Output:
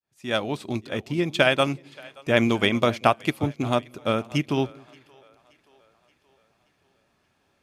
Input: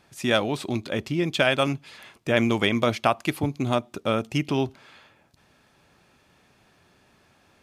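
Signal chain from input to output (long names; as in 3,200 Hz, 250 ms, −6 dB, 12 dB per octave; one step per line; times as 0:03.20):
fade in at the beginning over 0.51 s
echo with a time of its own for lows and highs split 410 Hz, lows 184 ms, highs 576 ms, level −16 dB
expander for the loud parts 1.5 to 1, over −41 dBFS
level +3 dB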